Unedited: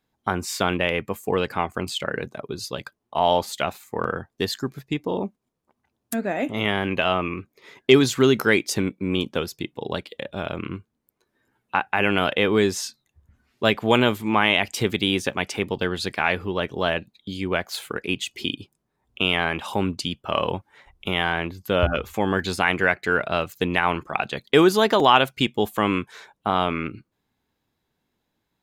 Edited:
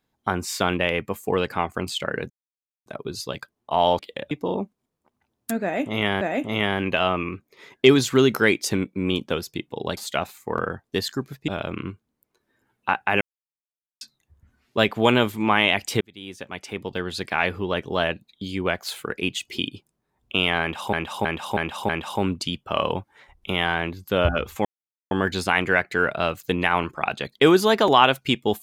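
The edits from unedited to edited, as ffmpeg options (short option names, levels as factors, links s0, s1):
-filter_complex "[0:a]asplit=15[s0][s1][s2][s3][s4][s5][s6][s7][s8][s9][s10][s11][s12][s13][s14];[s0]atrim=end=2.3,asetpts=PTS-STARTPTS,afade=t=out:st=2.296:d=0.004:c=hsin,apad=pad_dur=0.56[s15];[s1]atrim=start=2.3:end=3.432,asetpts=PTS-STARTPTS,afade=t=in:d=0.004:c=hsin[s16];[s2]atrim=start=10.018:end=10.342[s17];[s3]atrim=start=4.938:end=6.842[s18];[s4]atrim=start=6.258:end=10.022[s19];[s5]atrim=start=3.428:end=4.942[s20];[s6]atrim=start=10.338:end=12.07,asetpts=PTS-STARTPTS,afade=t=out:st=1.728:d=0.004:c=hsin[s21];[s7]atrim=start=12.07:end=12.87,asetpts=PTS-STARTPTS,volume=0[s22];[s8]atrim=start=12.87:end=14.87,asetpts=PTS-STARTPTS,afade=t=in:d=0.004:c=hsin,afade=t=out:st=1.996:d=0.004:c=hsin[s23];[s9]atrim=start=14.87:end=19.792,asetpts=PTS-STARTPTS,afade=t=in:d=1.51[s24];[s10]atrim=start=19.468:end=19.792[s25];[s11]atrim=start=19.468:end=19.792[s26];[s12]atrim=start=19.468:end=19.792[s27];[s13]atrim=start=19.468:end=22.23,asetpts=PTS-STARTPTS,afade=t=out:st=2.758:d=0.004:c=hsin,apad=pad_dur=0.46[s28];[s14]atrim=start=22.23,asetpts=PTS-STARTPTS,afade=t=in:d=0.004:c=hsin[s29];[s15][s16]concat=n=2:v=0:a=1[s30];[s30][s17]acrossfade=d=0.004:c1=hsin:c2=hsin[s31];[s31][s18]acrossfade=d=0.004:c1=hsin:c2=hsin[s32];[s32][s19]acrossfade=d=0.004:c1=hsin:c2=hsin[s33];[s33][s20]acrossfade=d=0.004:c1=hsin:c2=hsin[s34];[s21][s22][s23][s24]concat=n=4:v=0:a=1[s35];[s34][s35]acrossfade=d=0.004:c1=hsin:c2=hsin[s36];[s36][s25]acrossfade=d=0.004:c1=hsin:c2=hsin[s37];[s37][s26]acrossfade=d=0.004:c1=hsin:c2=hsin[s38];[s38][s27]acrossfade=d=0.004:c1=hsin:c2=hsin[s39];[s28][s29]concat=n=2:v=0:a=1[s40];[s39][s40]acrossfade=d=0.004:c1=hsin:c2=hsin"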